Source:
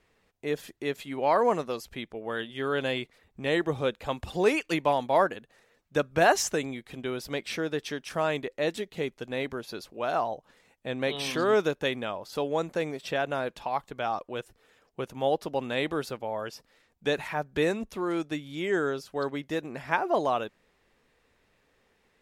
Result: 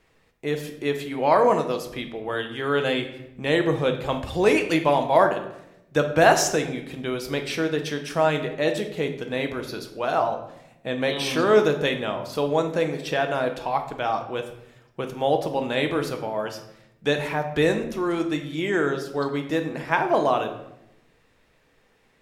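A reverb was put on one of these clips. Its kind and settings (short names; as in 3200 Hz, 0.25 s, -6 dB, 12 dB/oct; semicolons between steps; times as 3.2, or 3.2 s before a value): shoebox room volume 250 m³, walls mixed, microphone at 0.63 m; gain +4 dB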